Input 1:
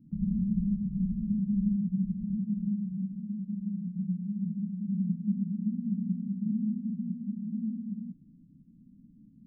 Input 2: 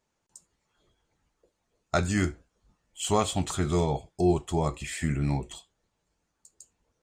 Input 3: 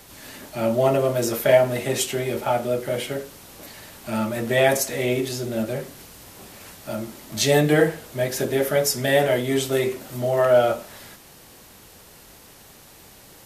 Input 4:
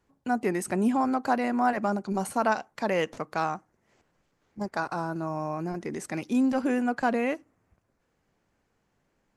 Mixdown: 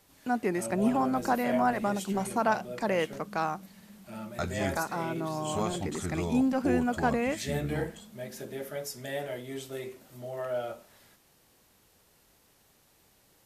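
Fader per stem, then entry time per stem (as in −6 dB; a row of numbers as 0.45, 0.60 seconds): −17.5, −8.0, −16.5, −2.0 decibels; 0.60, 2.45, 0.00, 0.00 seconds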